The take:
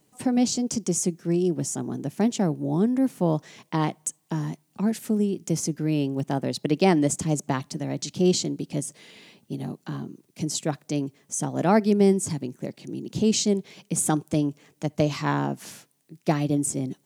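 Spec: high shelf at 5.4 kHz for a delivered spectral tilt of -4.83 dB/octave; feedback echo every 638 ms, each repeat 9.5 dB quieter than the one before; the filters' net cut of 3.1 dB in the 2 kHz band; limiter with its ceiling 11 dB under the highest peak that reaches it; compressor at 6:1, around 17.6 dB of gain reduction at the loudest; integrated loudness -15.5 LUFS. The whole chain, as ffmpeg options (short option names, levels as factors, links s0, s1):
-af "equalizer=f=2000:t=o:g=-4.5,highshelf=f=5400:g=4,acompressor=threshold=0.0178:ratio=6,alimiter=level_in=2.37:limit=0.0631:level=0:latency=1,volume=0.422,aecho=1:1:638|1276|1914|2552:0.335|0.111|0.0365|0.012,volume=20"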